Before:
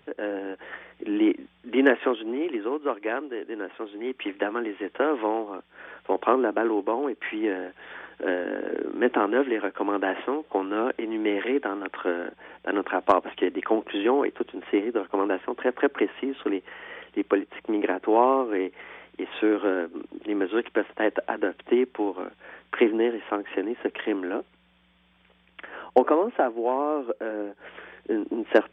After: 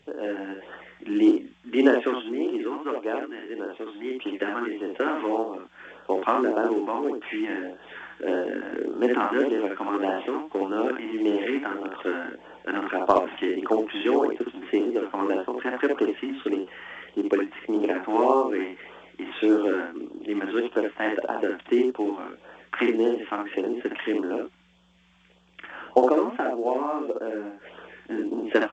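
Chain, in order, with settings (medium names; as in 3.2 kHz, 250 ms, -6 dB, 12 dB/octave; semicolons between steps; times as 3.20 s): on a send: early reflections 25 ms -14 dB, 62 ms -4 dB, 78 ms -15 dB; on the sum: LFO notch sine 1.7 Hz 410–2200 Hz; A-law 128 kbps 16 kHz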